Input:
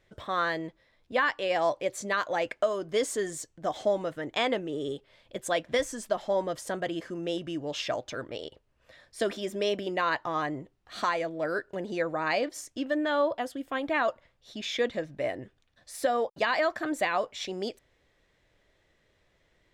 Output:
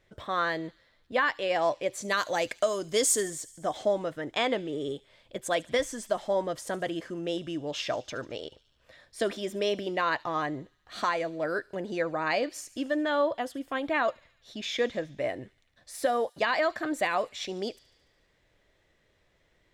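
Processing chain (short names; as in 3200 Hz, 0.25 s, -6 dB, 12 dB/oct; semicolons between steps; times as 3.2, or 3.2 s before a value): 2.08–3.21 tone controls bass +2 dB, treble +13 dB; on a send: thin delay 72 ms, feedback 68%, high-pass 3700 Hz, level -17 dB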